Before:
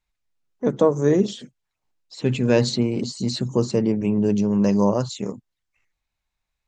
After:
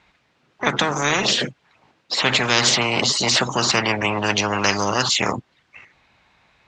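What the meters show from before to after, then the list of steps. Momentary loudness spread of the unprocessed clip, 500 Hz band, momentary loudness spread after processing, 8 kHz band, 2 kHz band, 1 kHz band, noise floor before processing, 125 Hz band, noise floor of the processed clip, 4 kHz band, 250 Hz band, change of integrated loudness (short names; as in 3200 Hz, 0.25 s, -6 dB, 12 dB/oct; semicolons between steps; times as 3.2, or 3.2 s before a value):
8 LU, -3.5 dB, 7 LU, +14.0 dB, +17.0 dB, +11.0 dB, -82 dBFS, -4.0 dB, -65 dBFS, +14.5 dB, -6.5 dB, +2.5 dB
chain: BPF 130–3100 Hz; spectral compressor 10:1; gain +3.5 dB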